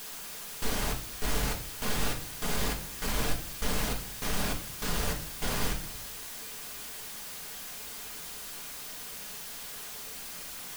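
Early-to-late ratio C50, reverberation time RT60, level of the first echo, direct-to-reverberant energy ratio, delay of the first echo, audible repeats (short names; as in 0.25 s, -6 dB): 10.0 dB, 0.50 s, none, 1.0 dB, none, none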